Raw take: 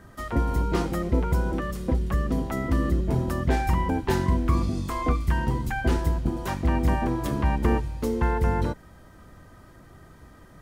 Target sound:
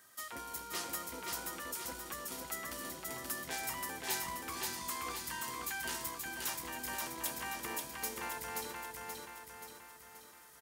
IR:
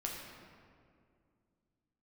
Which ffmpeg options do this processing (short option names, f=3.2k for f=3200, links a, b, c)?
-filter_complex "[0:a]asplit=2[a][b];[b]aeval=exprs='clip(val(0),-1,0.0631)':c=same,volume=-5.5dB[c];[a][c]amix=inputs=2:normalize=0,aderivative,aecho=1:1:529|1058|1587|2116|2645|3174|3703:0.708|0.368|0.191|0.0995|0.0518|0.0269|0.014"